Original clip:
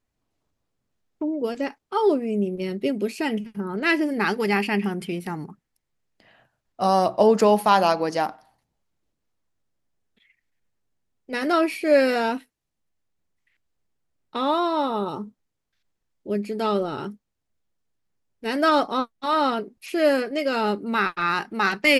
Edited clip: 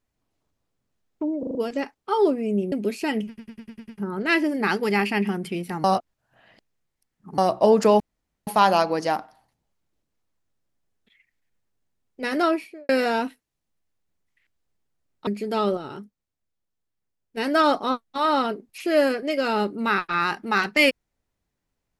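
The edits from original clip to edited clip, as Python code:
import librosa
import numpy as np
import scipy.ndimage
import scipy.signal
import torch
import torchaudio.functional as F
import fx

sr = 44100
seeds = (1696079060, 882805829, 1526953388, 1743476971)

y = fx.studio_fade_out(x, sr, start_s=11.49, length_s=0.5)
y = fx.edit(y, sr, fx.stutter(start_s=1.39, slice_s=0.04, count=5),
    fx.cut(start_s=2.56, length_s=0.33),
    fx.stutter(start_s=3.45, slice_s=0.1, count=7),
    fx.reverse_span(start_s=5.41, length_s=1.54),
    fx.insert_room_tone(at_s=7.57, length_s=0.47),
    fx.cut(start_s=14.37, length_s=1.98),
    fx.clip_gain(start_s=16.85, length_s=1.6, db=-5.5), tone=tone)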